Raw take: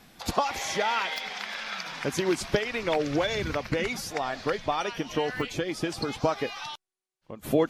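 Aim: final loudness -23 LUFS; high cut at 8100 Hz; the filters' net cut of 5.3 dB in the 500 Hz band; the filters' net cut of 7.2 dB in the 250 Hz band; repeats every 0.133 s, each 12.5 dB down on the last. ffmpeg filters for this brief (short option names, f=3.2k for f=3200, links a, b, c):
-af "lowpass=8.1k,equalizer=f=250:t=o:g=-9,equalizer=f=500:t=o:g=-4,aecho=1:1:133|266|399:0.237|0.0569|0.0137,volume=8.5dB"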